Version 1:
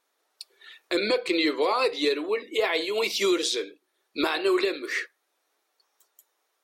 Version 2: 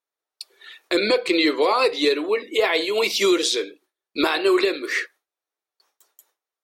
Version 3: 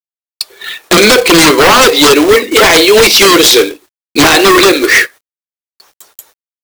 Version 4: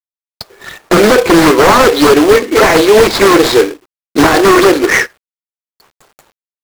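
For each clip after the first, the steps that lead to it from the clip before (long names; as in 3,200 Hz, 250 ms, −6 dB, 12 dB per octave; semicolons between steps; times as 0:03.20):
noise gate with hold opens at −55 dBFS; level +5 dB
sine wavefolder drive 11 dB, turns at −7.5 dBFS; log-companded quantiser 4 bits; level +5 dB
running median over 15 samples; highs frequency-modulated by the lows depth 0.25 ms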